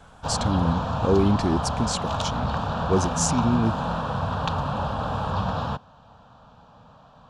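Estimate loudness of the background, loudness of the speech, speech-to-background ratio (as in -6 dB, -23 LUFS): -27.5 LUFS, -25.5 LUFS, 2.0 dB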